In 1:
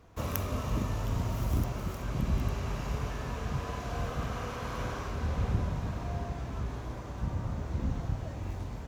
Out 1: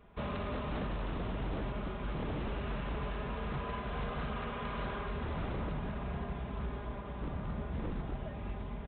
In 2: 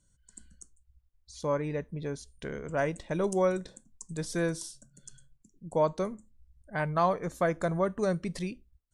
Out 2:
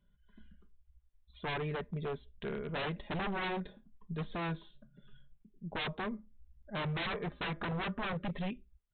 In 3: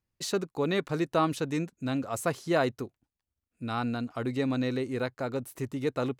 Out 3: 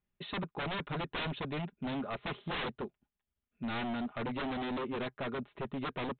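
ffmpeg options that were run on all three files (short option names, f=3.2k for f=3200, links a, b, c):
-af "aecho=1:1:4.9:0.61,aresample=8000,aeval=exprs='0.0355*(abs(mod(val(0)/0.0355+3,4)-2)-1)':c=same,aresample=44100,volume=-2dB"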